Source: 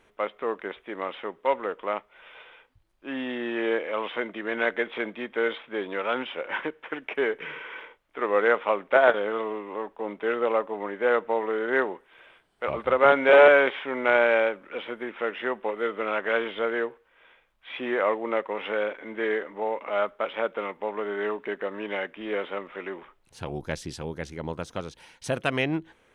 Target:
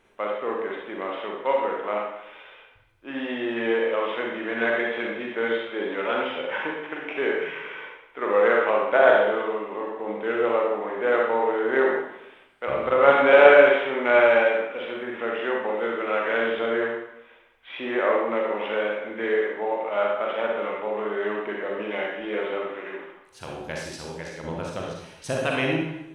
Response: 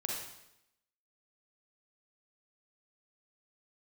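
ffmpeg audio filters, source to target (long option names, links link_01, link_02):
-filter_complex "[0:a]asettb=1/sr,asplit=3[link_01][link_02][link_03];[link_01]atrim=end=22.674[link_04];[link_02]atrim=start=22.67:end=24.44,asetpts=PTS-STARTPTS,afade=type=in:duration=0.004:curve=qsin,afade=type=out:start_time=1.766:duration=0.004:curve=qsin,lowshelf=frequency=440:gain=-7.5[link_05];[link_03]atrim=start=24.436[link_06];[link_04][link_05]acrossfade=duration=0.004:curve1=hsin:curve2=qsin[link_07];[link_07][link_06]acrossfade=duration=0.004:curve1=qsin:curve2=hsin[link_08];[1:a]atrim=start_sample=2205[link_09];[link_08][link_09]afir=irnorm=-1:irlink=0"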